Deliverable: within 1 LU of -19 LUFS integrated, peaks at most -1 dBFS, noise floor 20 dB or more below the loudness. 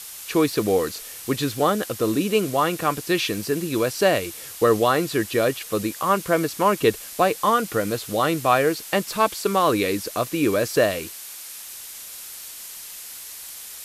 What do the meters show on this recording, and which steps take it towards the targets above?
noise floor -38 dBFS; noise floor target -42 dBFS; loudness -22.0 LUFS; peak -6.0 dBFS; loudness target -19.0 LUFS
-> denoiser 6 dB, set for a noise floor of -38 dBFS; gain +3 dB

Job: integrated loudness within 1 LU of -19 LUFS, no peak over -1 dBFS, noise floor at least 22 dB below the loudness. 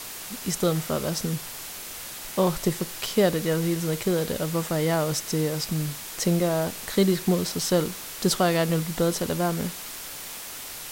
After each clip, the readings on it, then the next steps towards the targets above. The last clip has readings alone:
noise floor -38 dBFS; noise floor target -48 dBFS; loudness -26.0 LUFS; peak -8.5 dBFS; loudness target -19.0 LUFS
-> denoiser 10 dB, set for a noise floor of -38 dBFS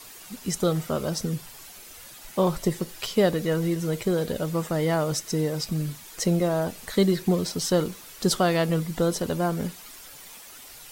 noise floor -45 dBFS; noise floor target -48 dBFS
-> denoiser 6 dB, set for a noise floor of -45 dBFS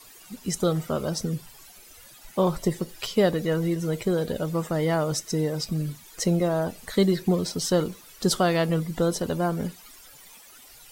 noise floor -50 dBFS; loudness -26.0 LUFS; peak -9.0 dBFS; loudness target -19.0 LUFS
-> gain +7 dB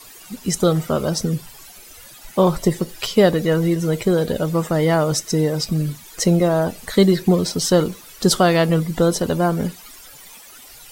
loudness -19.0 LUFS; peak -2.0 dBFS; noise floor -43 dBFS

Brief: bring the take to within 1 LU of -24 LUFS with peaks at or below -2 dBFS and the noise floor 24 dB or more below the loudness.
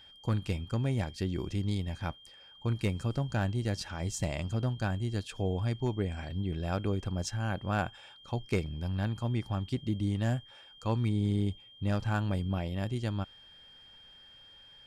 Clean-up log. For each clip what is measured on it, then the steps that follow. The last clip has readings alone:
clipped 0.2%; flat tops at -20.5 dBFS; steady tone 3200 Hz; tone level -53 dBFS; loudness -33.5 LUFS; peak -20.5 dBFS; loudness target -24.0 LUFS
-> clip repair -20.5 dBFS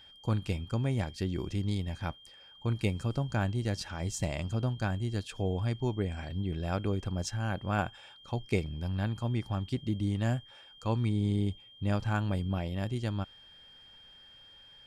clipped 0.0%; steady tone 3200 Hz; tone level -53 dBFS
-> notch 3200 Hz, Q 30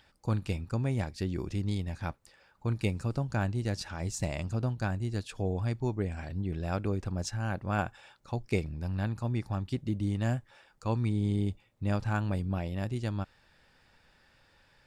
steady tone none; loudness -33.5 LUFS; peak -15.0 dBFS; loudness target -24.0 LUFS
-> gain +9.5 dB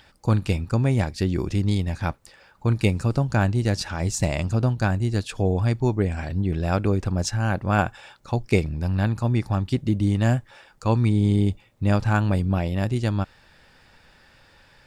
loudness -24.0 LUFS; peak -5.5 dBFS; noise floor -56 dBFS

